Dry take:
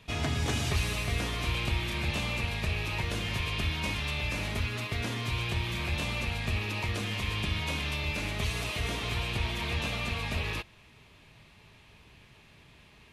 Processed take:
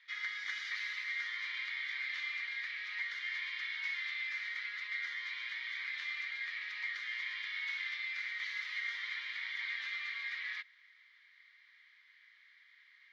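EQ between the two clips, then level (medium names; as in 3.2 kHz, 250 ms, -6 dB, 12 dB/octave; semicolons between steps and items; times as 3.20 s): ladder band-pass 2.2 kHz, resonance 75%; static phaser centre 2.6 kHz, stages 6; +7.5 dB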